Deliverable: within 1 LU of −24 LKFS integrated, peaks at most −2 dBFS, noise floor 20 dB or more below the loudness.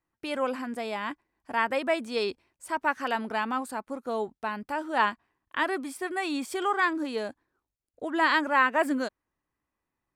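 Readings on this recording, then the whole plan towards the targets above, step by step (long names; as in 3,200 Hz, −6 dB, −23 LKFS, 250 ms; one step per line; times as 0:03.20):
integrated loudness −29.0 LKFS; sample peak −10.0 dBFS; target loudness −24.0 LKFS
→ level +5 dB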